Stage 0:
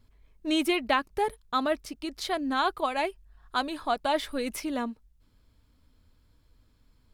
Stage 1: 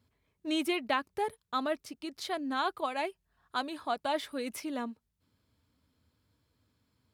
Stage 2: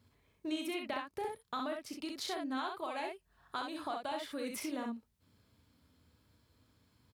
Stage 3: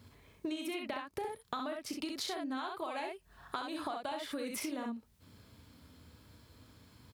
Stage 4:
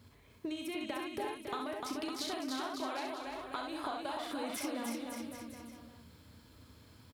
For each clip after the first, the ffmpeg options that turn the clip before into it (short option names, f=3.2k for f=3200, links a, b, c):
-af "highpass=f=81:w=0.5412,highpass=f=81:w=1.3066,volume=-5dB"
-filter_complex "[0:a]acompressor=threshold=-42dB:ratio=4,asplit=2[a][b];[b]aecho=0:1:35|65:0.376|0.631[c];[a][c]amix=inputs=2:normalize=0,volume=3dB"
-af "acompressor=threshold=-47dB:ratio=6,volume=10.5dB"
-af "aecho=1:1:300|555|771.8|956|1113:0.631|0.398|0.251|0.158|0.1,volume=-1.5dB"